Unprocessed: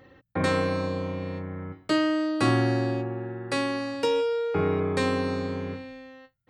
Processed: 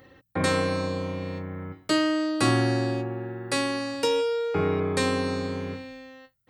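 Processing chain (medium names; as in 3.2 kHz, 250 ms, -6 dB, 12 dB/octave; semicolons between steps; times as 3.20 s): treble shelf 5.4 kHz +11.5 dB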